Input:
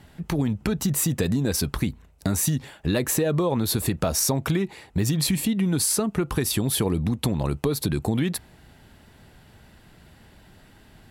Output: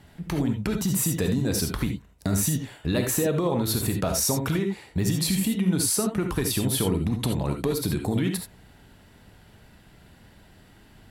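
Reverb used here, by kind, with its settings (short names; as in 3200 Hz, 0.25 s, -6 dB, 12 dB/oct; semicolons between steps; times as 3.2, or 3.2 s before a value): non-linear reverb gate 0.1 s rising, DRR 4.5 dB; gain -2.5 dB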